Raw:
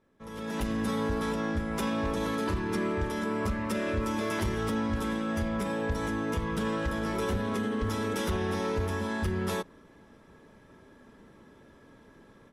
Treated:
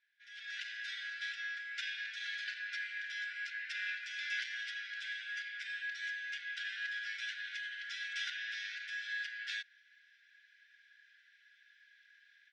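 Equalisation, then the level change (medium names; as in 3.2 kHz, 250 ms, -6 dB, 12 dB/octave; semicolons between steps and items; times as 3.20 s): brick-wall FIR high-pass 1.4 kHz; low-pass 4.8 kHz 24 dB/octave; +1.0 dB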